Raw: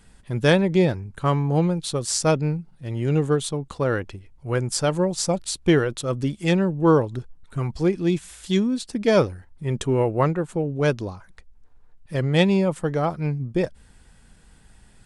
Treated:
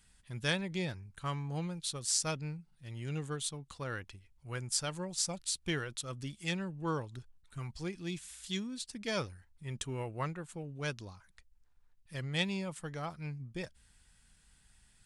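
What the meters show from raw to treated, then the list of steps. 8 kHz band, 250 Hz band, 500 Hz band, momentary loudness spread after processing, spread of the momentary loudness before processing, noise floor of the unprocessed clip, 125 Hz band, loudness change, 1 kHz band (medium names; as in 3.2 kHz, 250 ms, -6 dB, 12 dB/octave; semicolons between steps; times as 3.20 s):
-6.0 dB, -18.0 dB, -20.0 dB, 12 LU, 11 LU, -53 dBFS, -16.0 dB, -15.0 dB, -15.0 dB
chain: amplifier tone stack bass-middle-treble 5-5-5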